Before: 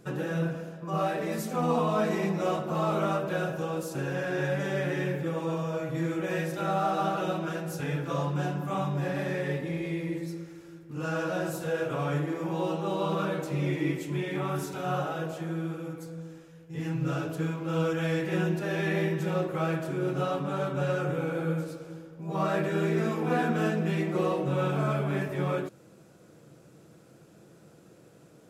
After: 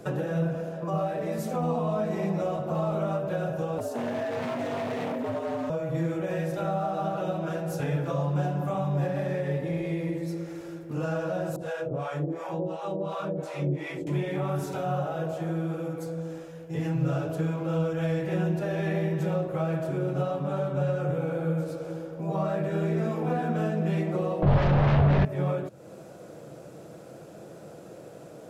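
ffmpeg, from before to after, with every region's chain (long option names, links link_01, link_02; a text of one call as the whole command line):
ffmpeg -i in.wav -filter_complex "[0:a]asettb=1/sr,asplit=3[link_01][link_02][link_03];[link_01]atrim=end=3.784[link_04];[link_02]atrim=start=3.78:end=5.7,asetpts=PTS-STARTPTS,afade=type=in:duration=0.004:curve=qsin,afade=type=out:start_time=1.916:duration=0.004:curve=qsin,lowshelf=frequency=160:gain=5,aeval=exprs='0.0447*(abs(mod(val(0)/0.0447+3,4)-2)-1)':channel_layout=same,afreqshift=99[link_05];[link_03]atrim=start=5.696[link_06];[link_04][link_05]acrossfade=duration=0.004:curve1=hsin:curve2=qsin[link_07];[link_07][link_06]acrossfade=duration=0.004:curve1=qsin:curve2=hsin,asettb=1/sr,asplit=3[link_08][link_09][link_10];[link_08]atrim=end=11.564[link_11];[link_09]atrim=start=11.56:end=14.07,asetpts=PTS-STARTPTS,afade=type=in:duration=0.004:curve=qsin,afade=type=out:start_time=2.506:duration=0.004:curve=qsin,lowpass=11000,acrossover=split=610[link_12][link_13];[link_12]aeval=exprs='val(0)*(1-1/2+1/2*cos(2*PI*2.8*n/s))':channel_layout=same[link_14];[link_13]aeval=exprs='val(0)*(1-1/2-1/2*cos(2*PI*2.8*n/s))':channel_layout=same[link_15];[link_14][link_15]amix=inputs=2:normalize=0[link_16];[link_10]atrim=start=14.066[link_17];[link_11][link_16]acrossfade=duration=0.004:curve1=hsin:curve2=qsin[link_18];[link_18][link_17]acrossfade=duration=0.004:curve1=qsin:curve2=hsin,asettb=1/sr,asplit=3[link_19][link_20][link_21];[link_19]atrim=end=24.424[link_22];[link_20]atrim=start=24.42:end=25.25,asetpts=PTS-STARTPTS,afade=type=in:duration=0.004:curve=qsin,afade=type=out:start_time=0.826:duration=0.004:curve=qsin,lowpass=frequency=4200:width=0.5412,lowpass=frequency=4200:width=1.3066,aeval=exprs='0.141*sin(PI/2*3.55*val(0)/0.141)':channel_layout=same[link_23];[link_21]atrim=start=25.246[link_24];[link_22][link_23]acrossfade=duration=0.004:curve1=hsin:curve2=qsin[link_25];[link_25][link_24]acrossfade=duration=0.004:curve1=qsin:curve2=hsin,equalizer=frequency=620:width=1.4:gain=10,acrossover=split=160[link_26][link_27];[link_27]acompressor=threshold=-39dB:ratio=3[link_28];[link_26][link_28]amix=inputs=2:normalize=0,volume=6dB" out.wav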